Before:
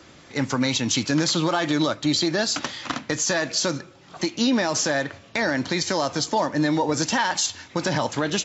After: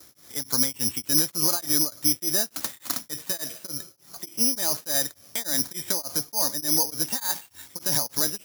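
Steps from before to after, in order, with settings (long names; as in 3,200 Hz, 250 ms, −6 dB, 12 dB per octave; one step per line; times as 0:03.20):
noise gate with hold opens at −43 dBFS
bad sample-rate conversion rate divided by 8×, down filtered, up zero stuff
tremolo along a rectified sine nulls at 3.4 Hz
level −8 dB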